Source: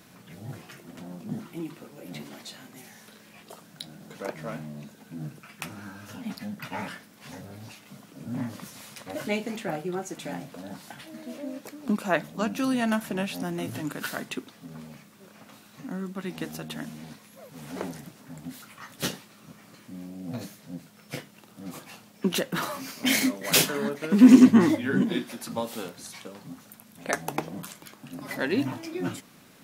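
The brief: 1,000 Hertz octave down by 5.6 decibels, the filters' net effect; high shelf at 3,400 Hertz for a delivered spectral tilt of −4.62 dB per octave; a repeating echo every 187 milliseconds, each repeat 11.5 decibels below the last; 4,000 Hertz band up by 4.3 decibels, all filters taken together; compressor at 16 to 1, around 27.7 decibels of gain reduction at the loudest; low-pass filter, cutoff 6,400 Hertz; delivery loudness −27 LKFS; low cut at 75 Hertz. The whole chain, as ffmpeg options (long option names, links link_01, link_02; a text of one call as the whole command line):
ffmpeg -i in.wav -af "highpass=75,lowpass=6400,equalizer=frequency=1000:width_type=o:gain=-8,highshelf=frequency=3400:gain=-3.5,equalizer=frequency=4000:width_type=o:gain=9,acompressor=threshold=-37dB:ratio=16,aecho=1:1:187|374|561:0.266|0.0718|0.0194,volume=15.5dB" out.wav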